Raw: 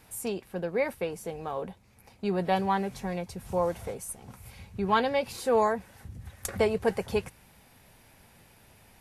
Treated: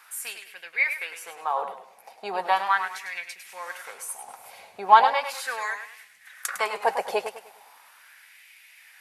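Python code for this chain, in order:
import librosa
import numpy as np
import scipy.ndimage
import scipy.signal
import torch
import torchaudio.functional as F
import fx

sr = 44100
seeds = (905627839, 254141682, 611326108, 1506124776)

y = fx.filter_lfo_highpass(x, sr, shape='sine', hz=0.38, low_hz=660.0, high_hz=2200.0, q=3.4)
y = fx.echo_warbled(y, sr, ms=102, feedback_pct=34, rate_hz=2.8, cents=86, wet_db=-9)
y = F.gain(torch.from_numpy(y), 3.5).numpy()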